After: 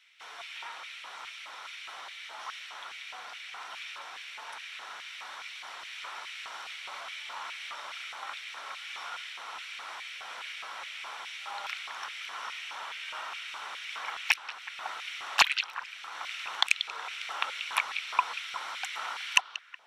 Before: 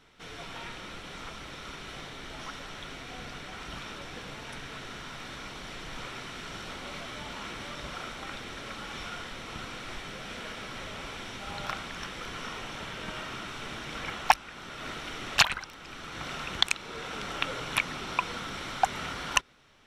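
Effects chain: delay with a stepping band-pass 0.185 s, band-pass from 3500 Hz, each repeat -1.4 oct, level -9 dB; LFO high-pass square 2.4 Hz 910–2300 Hz; gain -3 dB

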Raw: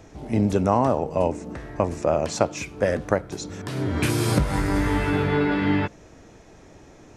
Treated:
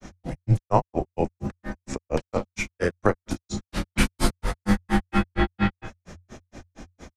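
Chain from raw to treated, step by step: bell 520 Hz -4 dB 0.59 oct; in parallel at +2 dB: compressor, threshold -32 dBFS, peak gain reduction 16 dB; on the sum: early reflections 34 ms -11 dB, 64 ms -17.5 dB; grains 0.125 s, grains 4.3/s, pitch spread up and down by 0 st; frequency shift -90 Hz; gain +2.5 dB

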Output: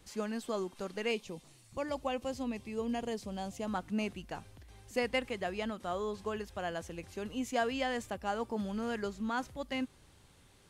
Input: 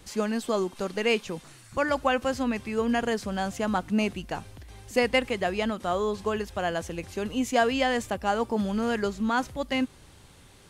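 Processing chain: 1.11–3.67 bell 1500 Hz -11.5 dB 0.7 oct; gain -9 dB

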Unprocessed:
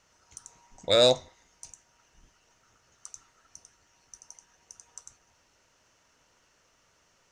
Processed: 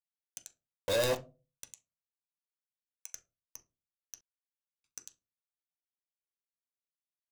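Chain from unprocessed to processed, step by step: per-bin expansion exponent 1.5; companded quantiser 2-bit; 1.68–3.12 HPF 930 Hz 12 dB/oct; reverb RT60 0.30 s, pre-delay 9 ms, DRR 6 dB; 4.21–4.84 mute; gain -6 dB

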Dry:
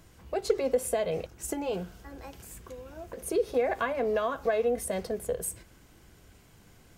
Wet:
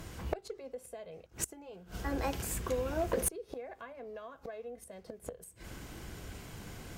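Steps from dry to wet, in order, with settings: high shelf 7000 Hz -3 dB; flipped gate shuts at -28 dBFS, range -28 dB; one-sided clip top -36.5 dBFS; gain +10.5 dB

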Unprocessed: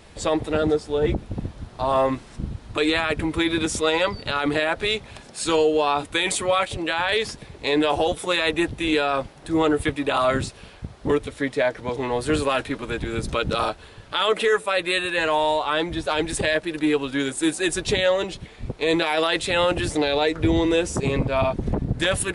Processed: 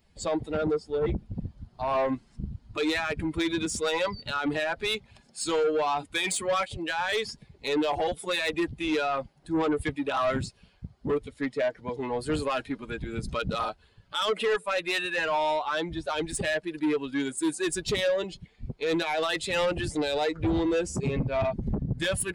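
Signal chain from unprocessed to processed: per-bin expansion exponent 1.5; bell 160 Hz +3 dB; notch 5900 Hz, Q 14; soft clip -21 dBFS, distortion -13 dB

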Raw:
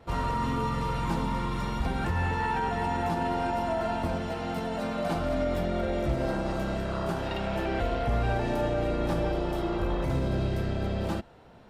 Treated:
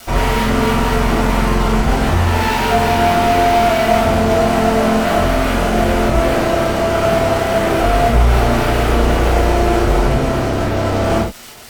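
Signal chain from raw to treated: Chebyshev low-pass 990 Hz, order 2; crackle 180/s -39 dBFS; fuzz box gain 43 dB, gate -47 dBFS; reverb, pre-delay 3 ms, DRR -8.5 dB; gain -11 dB

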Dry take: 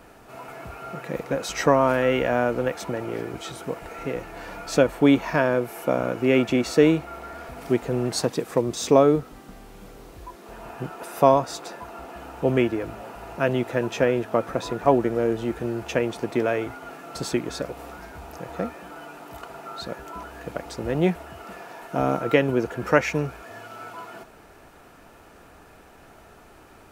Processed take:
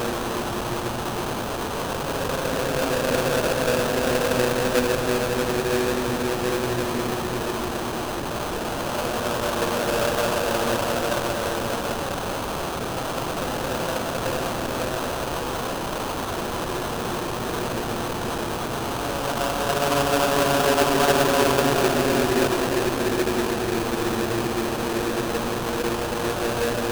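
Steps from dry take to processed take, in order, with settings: Paulstretch 20×, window 0.25 s, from 13.85; whine 6200 Hz -23 dBFS; sample-rate reducer 2100 Hz, jitter 20%; gain -3 dB

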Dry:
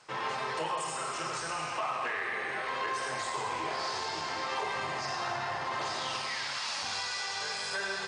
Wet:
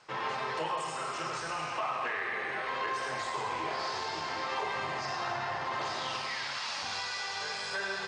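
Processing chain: Bessel low-pass 5600 Hz, order 2

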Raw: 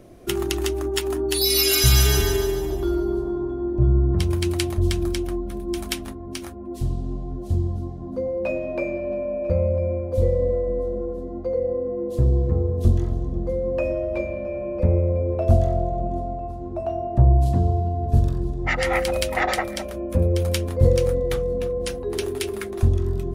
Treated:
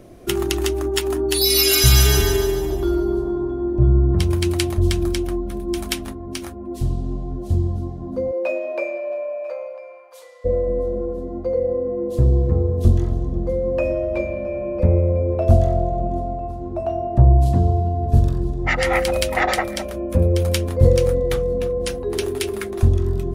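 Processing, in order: 8.31–10.44 HPF 310 Hz -> 1200 Hz 24 dB/oct; gain +3 dB

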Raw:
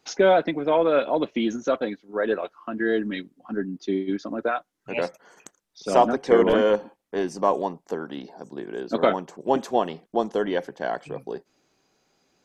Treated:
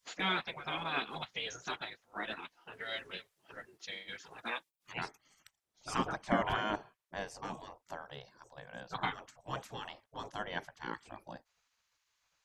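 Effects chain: tilt shelf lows -4 dB, about 740 Hz, from 2.72 s lows -8 dB, from 4.92 s lows +3 dB; spectral gate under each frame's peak -15 dB weak; gain -3.5 dB

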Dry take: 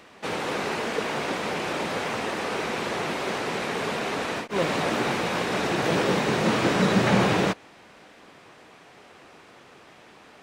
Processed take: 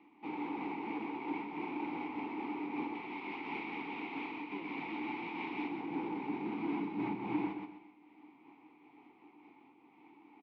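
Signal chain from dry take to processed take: 2.95–5.68 bell 3200 Hz +9.5 dB 2.5 oct; limiter -19 dBFS, peak gain reduction 10 dB; vowel filter u; soft clip -30.5 dBFS, distortion -22 dB; air absorption 240 m; doubler 24 ms -12.5 dB; feedback echo 0.126 s, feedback 29%, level -4 dB; noise-modulated level, depth 55%; gain +4 dB

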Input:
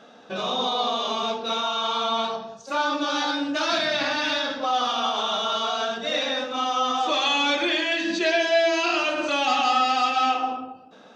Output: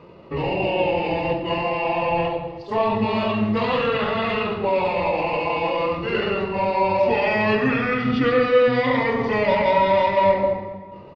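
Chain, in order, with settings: octaver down 1 oct, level -5 dB; high shelf 2100 Hz -9.5 dB; pitch shift -5 st; plate-style reverb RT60 1.7 s, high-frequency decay 0.75×, DRR 8 dB; gain +5 dB

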